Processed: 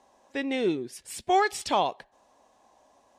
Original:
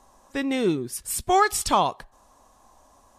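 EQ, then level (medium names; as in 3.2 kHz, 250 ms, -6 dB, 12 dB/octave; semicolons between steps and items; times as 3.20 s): band-pass filter 2 kHz, Q 0.53; peaking EQ 1.2 kHz -14 dB 0.98 oct; treble shelf 2.2 kHz -11 dB; +8.0 dB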